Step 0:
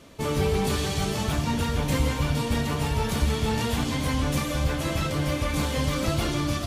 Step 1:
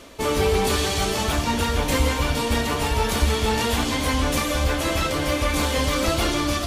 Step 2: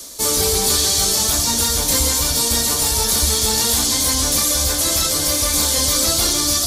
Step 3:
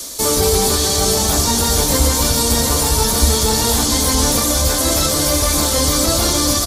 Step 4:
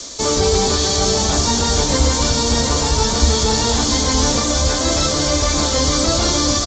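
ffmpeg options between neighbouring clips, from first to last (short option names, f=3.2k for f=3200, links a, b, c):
-af "equalizer=f=140:t=o:w=1.1:g=-13,areverse,acompressor=mode=upward:threshold=-35dB:ratio=2.5,areverse,volume=6.5dB"
-filter_complex "[0:a]acrossover=split=150|940|4300[a][b][c][d];[d]alimiter=level_in=5.5dB:limit=-24dB:level=0:latency=1:release=30,volume=-5.5dB[e];[a][b][c][e]amix=inputs=4:normalize=0,aexciter=amount=8:drive=7.1:freq=4k,volume=-2dB"
-filter_complex "[0:a]acrossover=split=1400[a][b];[b]alimiter=limit=-15dB:level=0:latency=1:release=195[c];[a][c]amix=inputs=2:normalize=0,asplit=2[d][e];[e]adelay=699.7,volume=-7dB,highshelf=f=4k:g=-15.7[f];[d][f]amix=inputs=2:normalize=0,volume=6dB"
-af "aresample=16000,aresample=44100"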